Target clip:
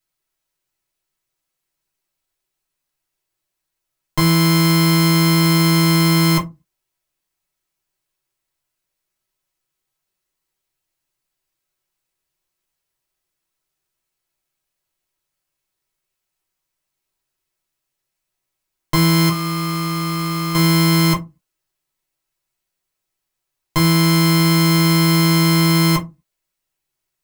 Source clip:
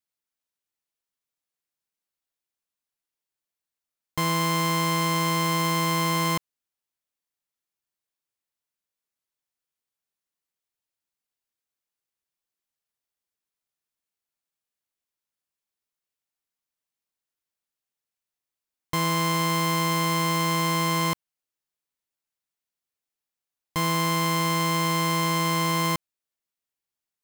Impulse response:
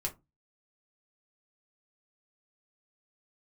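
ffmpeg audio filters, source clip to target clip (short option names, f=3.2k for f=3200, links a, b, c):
-filter_complex "[0:a]asettb=1/sr,asplit=3[a][b][c];[a]atrim=end=19.294[d];[b]atrim=start=19.29:end=20.55,asetpts=PTS-STARTPTS,afade=t=in:d=0.004:c=qsin,afade=t=out:st=1.256:d=0.004:c=qsin,volume=30.5dB,asoftclip=hard,volume=-30.5dB[e];[c]atrim=start=20.546[f];[d][e]acrossfade=d=0.004:c1=hsin:c2=qsin[g];[g][f]acrossfade=d=0.004:c1=qsin:c2=hsin[h];[1:a]atrim=start_sample=2205,afade=t=out:st=0.32:d=0.01,atrim=end_sample=14553[i];[h][i]afir=irnorm=-1:irlink=0,volume=8.5dB"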